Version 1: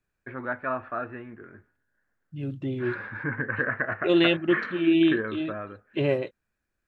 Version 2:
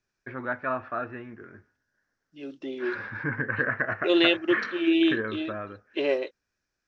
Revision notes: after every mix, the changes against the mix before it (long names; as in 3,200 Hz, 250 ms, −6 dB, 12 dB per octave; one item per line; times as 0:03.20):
second voice: add high-pass filter 300 Hz 24 dB per octave
master: add low-pass with resonance 5,600 Hz, resonance Q 4.6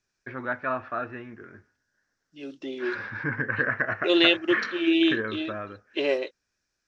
master: add high-shelf EQ 3,900 Hz +8.5 dB